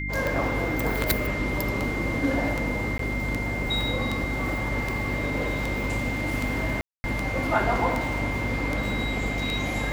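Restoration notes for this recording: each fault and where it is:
hum 50 Hz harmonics 6 -32 dBFS
tick
whine 2.1 kHz -31 dBFS
2.98–2.99 s: dropout 13 ms
6.81–7.04 s: dropout 230 ms

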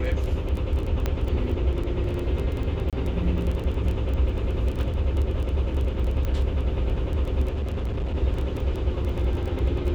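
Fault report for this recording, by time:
crackle 13 per s -28 dBFS
1.06 s: pop -12 dBFS
2.90–2.93 s: dropout 27 ms
6.25 s: pop -17 dBFS
7.54–8.16 s: clipped -23.5 dBFS

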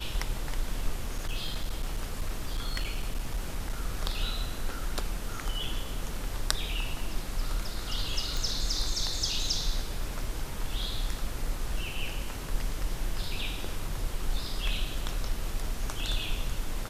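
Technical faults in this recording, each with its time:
1.02–3.73 s: clipped -25.5 dBFS
8.37 s: pop

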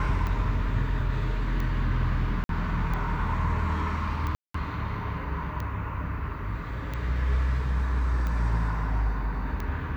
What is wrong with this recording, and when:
tick 45 rpm -20 dBFS
2.44–2.49 s: dropout 52 ms
4.35–4.54 s: dropout 194 ms

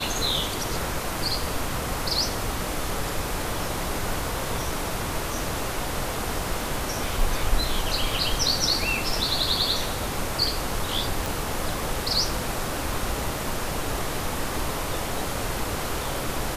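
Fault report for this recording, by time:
11.26 s: pop

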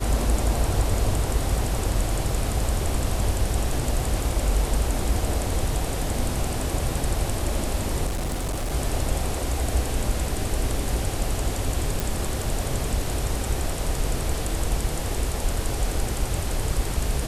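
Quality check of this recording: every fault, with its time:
8.06–8.73 s: clipped -23.5 dBFS
12.00 s: pop

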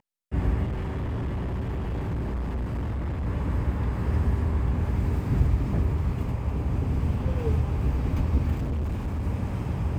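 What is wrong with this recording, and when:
0.65–3.27 s: clipped -26 dBFS
8.56–9.23 s: clipped -25 dBFS

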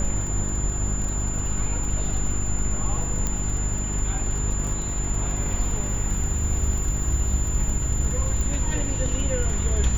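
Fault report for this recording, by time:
crackle 38 per s -30 dBFS
hum 50 Hz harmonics 8 -28 dBFS
whine 7.1 kHz -30 dBFS
3.27 s: pop -12 dBFS
4.67 s: dropout 3.9 ms
8.41 s: pop

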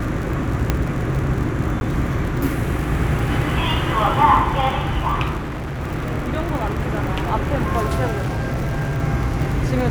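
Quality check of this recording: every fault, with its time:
crackle 74 per s -26 dBFS
0.70 s: pop -4 dBFS
1.80–1.81 s: dropout 11 ms
5.37–5.81 s: clipped -24 dBFS
8.11–9.01 s: clipped -18.5 dBFS

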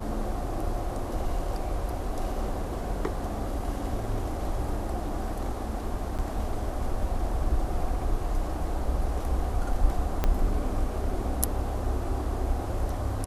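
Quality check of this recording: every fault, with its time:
6.18–6.19 s: dropout 7.4 ms
10.24 s: pop -12 dBFS

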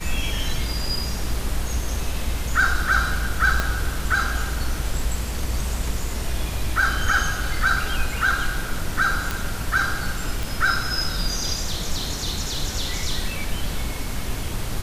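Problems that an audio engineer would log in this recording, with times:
3.60 s: pop -7 dBFS
9.31 s: pop
10.43 s: pop

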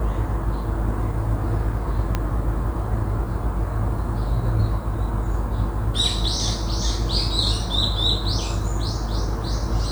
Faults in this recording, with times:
2.15 s: pop -9 dBFS

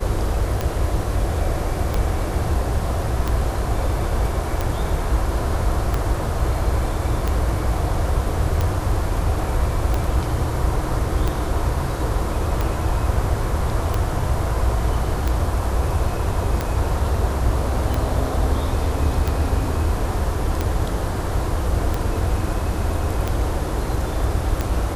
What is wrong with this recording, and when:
tick 45 rpm -9 dBFS

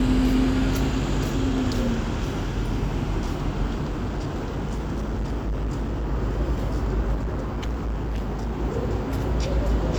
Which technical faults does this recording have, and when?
3.82–6.10 s: clipped -23 dBFS
7.14–8.59 s: clipped -23.5 dBFS

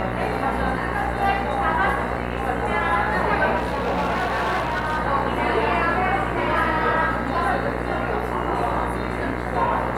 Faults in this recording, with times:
buzz 60 Hz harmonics 36 -28 dBFS
3.56–4.99 s: clipped -19 dBFS

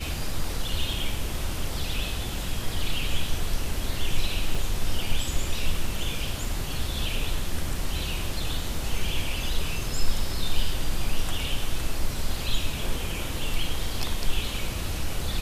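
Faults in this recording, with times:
4.55 s: dropout 3.7 ms

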